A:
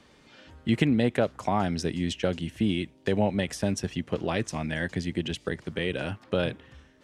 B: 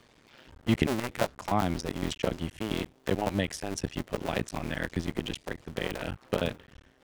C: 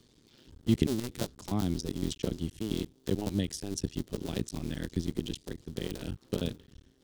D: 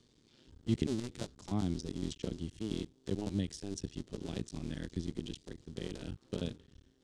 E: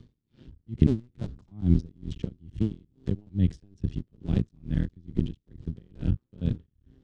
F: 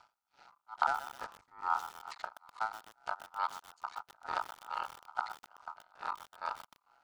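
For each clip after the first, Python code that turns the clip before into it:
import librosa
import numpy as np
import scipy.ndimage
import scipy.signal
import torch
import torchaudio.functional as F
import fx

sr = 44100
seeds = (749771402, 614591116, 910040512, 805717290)

y1 = fx.cycle_switch(x, sr, every=2, mode='muted')
y2 = fx.band_shelf(y1, sr, hz=1200.0, db=-13.0, octaves=2.6)
y3 = scipy.signal.sosfilt(scipy.signal.butter(4, 8900.0, 'lowpass', fs=sr, output='sos'), y2)
y3 = fx.hpss(y3, sr, part='harmonic', gain_db=5)
y3 = y3 * 10.0 ** (-7.5 / 20.0)
y4 = fx.bass_treble(y3, sr, bass_db=15, treble_db=-14)
y4 = y4 * 10.0 ** (-32 * (0.5 - 0.5 * np.cos(2.0 * np.pi * 2.3 * np.arange(len(y4)) / sr)) / 20.0)
y4 = y4 * 10.0 ** (6.5 / 20.0)
y5 = fx.highpass(y4, sr, hz=660.0, slope=6)
y5 = y5 * np.sin(2.0 * np.pi * 1100.0 * np.arange(len(y5)) / sr)
y5 = fx.echo_crushed(y5, sr, ms=125, feedback_pct=55, bits=7, wet_db=-11.0)
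y5 = y5 * 10.0 ** (4.0 / 20.0)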